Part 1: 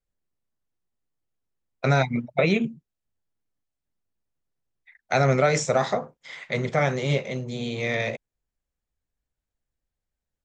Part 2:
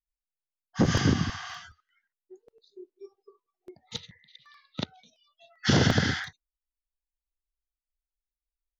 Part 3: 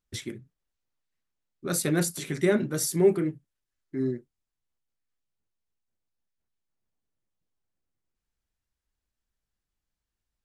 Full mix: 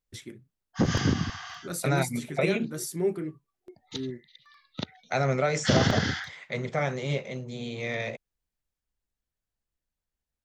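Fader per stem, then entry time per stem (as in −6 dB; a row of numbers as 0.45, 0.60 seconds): −5.5, −1.5, −6.5 decibels; 0.00, 0.00, 0.00 seconds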